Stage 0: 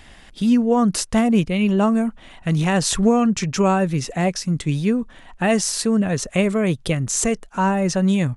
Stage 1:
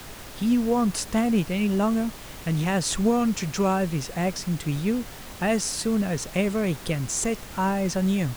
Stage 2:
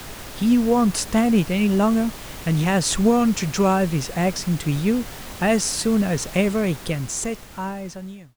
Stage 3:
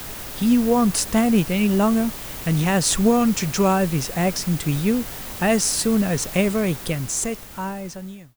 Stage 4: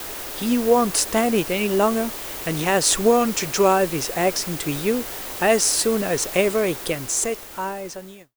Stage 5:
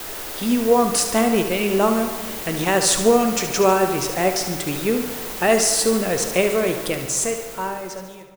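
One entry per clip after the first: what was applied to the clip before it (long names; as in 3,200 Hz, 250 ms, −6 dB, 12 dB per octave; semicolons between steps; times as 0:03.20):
background noise pink −35 dBFS; level −5.5 dB
fade-out on the ending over 1.99 s; level +4.5 dB
high-shelf EQ 11,000 Hz +11 dB
noise gate with hold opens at −30 dBFS; low shelf with overshoot 260 Hz −8.5 dB, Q 1.5; level +2 dB
repeating echo 72 ms, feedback 55%, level −10 dB; on a send at −9.5 dB: convolution reverb RT60 2.0 s, pre-delay 5 ms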